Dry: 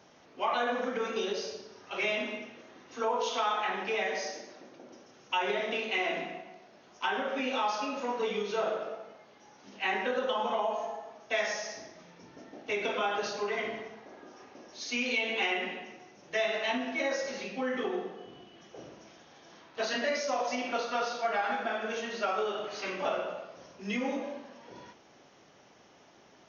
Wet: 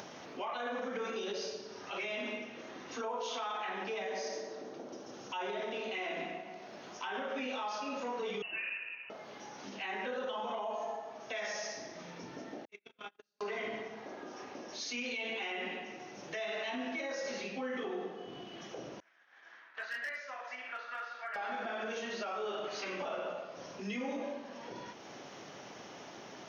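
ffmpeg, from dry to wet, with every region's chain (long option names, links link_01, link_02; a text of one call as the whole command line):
ffmpeg -i in.wav -filter_complex "[0:a]asettb=1/sr,asplit=3[link_01][link_02][link_03];[link_01]atrim=end=3.844[link_04];[link_02]atrim=start=3.84:end=5.95,asetpts=PTS-STARTPTS,afade=type=in:duration=0.004:curve=qsin,afade=type=out:start_time=2.106:duration=0.004:curve=qsin,equalizer=frequency=2200:width=1.6:gain=-5,asplit=2[link_05][link_06];[link_06]adelay=147,lowpass=frequency=1500:poles=1,volume=-8dB,asplit=2[link_07][link_08];[link_08]adelay=147,lowpass=frequency=1500:poles=1,volume=0.55,asplit=2[link_09][link_10];[link_10]adelay=147,lowpass=frequency=1500:poles=1,volume=0.55,asplit=2[link_11][link_12];[link_12]adelay=147,lowpass=frequency=1500:poles=1,volume=0.55,asplit=2[link_13][link_14];[link_14]adelay=147,lowpass=frequency=1500:poles=1,volume=0.55,asplit=2[link_15][link_16];[link_16]adelay=147,lowpass=frequency=1500:poles=1,volume=0.55,asplit=2[link_17][link_18];[link_18]adelay=147,lowpass=frequency=1500:poles=1,volume=0.55[link_19];[link_05][link_07][link_09][link_11][link_13][link_15][link_17][link_19]amix=inputs=8:normalize=0,atrim=end_sample=93051[link_20];[link_03]atrim=start=5.946[link_21];[link_04][link_20]acrossfade=duration=0.004:curve1=hsin:curve2=qsin[link_22];[link_22][link_21]acrossfade=duration=0.004:curve1=qsin:curve2=hsin,asettb=1/sr,asplit=3[link_23][link_24][link_25];[link_23]atrim=end=8.424[link_26];[link_24]atrim=start=8.42:end=9.1,asetpts=PTS-STARTPTS,afade=type=in:duration=0.004:curve=qsin,afade=type=out:start_time=0.676:duration=0.004:curve=qsin,equalizer=frequency=670:width=0.41:gain=-6.5,lowpass=frequency=2600:width_type=q:width=0.5098,lowpass=frequency=2600:width_type=q:width=0.6013,lowpass=frequency=2600:width_type=q:width=0.9,lowpass=frequency=2600:width_type=q:width=2.563,afreqshift=-3100[link_27];[link_25]atrim=start=9.096[link_28];[link_26][link_27]acrossfade=duration=0.004:curve1=hsin:curve2=qsin[link_29];[link_29][link_28]acrossfade=duration=0.004:curve1=qsin:curve2=hsin,asettb=1/sr,asplit=3[link_30][link_31][link_32];[link_30]atrim=end=12.654[link_33];[link_31]atrim=start=12.65:end=13.41,asetpts=PTS-STARTPTS,afade=type=in:duration=0.004:curve=qsin,afade=type=out:start_time=0.756:duration=0.004:curve=qsin,agate=range=-59dB:threshold=-27dB:ratio=16:release=100:detection=peak,equalizer=frequency=680:width_type=o:width=1.6:gain=-11[link_34];[link_32]atrim=start=13.406[link_35];[link_33][link_34]acrossfade=duration=0.004:curve1=hsin:curve2=qsin[link_36];[link_36][link_35]acrossfade=duration=0.004:curve1=qsin:curve2=hsin,asettb=1/sr,asplit=3[link_37][link_38][link_39];[link_37]atrim=end=19.004[link_40];[link_38]atrim=start=19:end=21.36,asetpts=PTS-STARTPTS,afade=type=in:duration=0.004:curve=qsin,afade=type=out:start_time=2.356:duration=0.004:curve=qsin,agate=range=-33dB:threshold=-46dB:ratio=3:release=100:detection=peak,bandpass=frequency=1700:width_type=q:width=3.6,asoftclip=type=hard:threshold=-33dB[link_41];[link_39]atrim=start=21.356[link_42];[link_40][link_41]acrossfade=duration=0.004:curve1=hsin:curve2=qsin[link_43];[link_43][link_42]acrossfade=duration=0.004:curve1=qsin:curve2=hsin,highpass=100,acompressor=mode=upward:threshold=-37dB:ratio=2.5,alimiter=level_in=5dB:limit=-24dB:level=0:latency=1:release=51,volume=-5dB,volume=-1dB" out.wav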